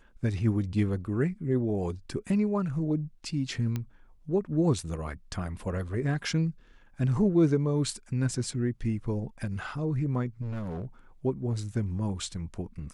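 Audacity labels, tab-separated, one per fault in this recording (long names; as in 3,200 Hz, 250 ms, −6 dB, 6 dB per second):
3.760000	3.760000	click −19 dBFS
10.410000	10.850000	clipping −31 dBFS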